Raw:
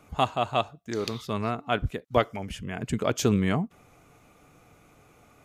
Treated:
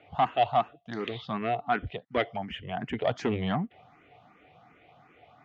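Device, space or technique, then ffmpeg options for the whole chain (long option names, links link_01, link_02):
barber-pole phaser into a guitar amplifier: -filter_complex "[0:a]asplit=2[link_01][link_02];[link_02]afreqshift=2.7[link_03];[link_01][link_03]amix=inputs=2:normalize=1,asoftclip=type=tanh:threshold=-21dB,highpass=93,equalizer=frequency=730:width_type=q:width=4:gain=10,equalizer=frequency=1900:width_type=q:width=4:gain=8,equalizer=frequency=3100:width_type=q:width=4:gain=7,lowpass=frequency=3900:width=0.5412,lowpass=frequency=3900:width=1.3066"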